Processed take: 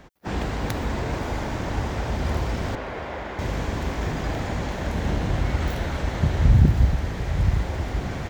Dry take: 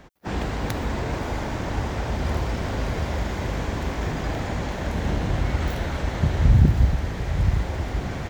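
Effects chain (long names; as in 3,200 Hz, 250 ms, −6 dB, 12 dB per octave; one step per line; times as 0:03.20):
0:02.75–0:03.39: bass and treble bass −13 dB, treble −15 dB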